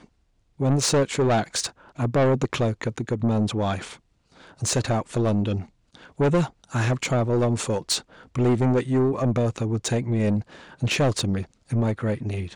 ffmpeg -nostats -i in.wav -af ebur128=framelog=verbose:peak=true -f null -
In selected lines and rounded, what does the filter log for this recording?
Integrated loudness:
  I:         -24.2 LUFS
  Threshold: -34.7 LUFS
Loudness range:
  LRA:         2.8 LU
  Threshold: -44.6 LUFS
  LRA low:   -26.3 LUFS
  LRA high:  -23.5 LUFS
True peak:
  Peak:      -14.6 dBFS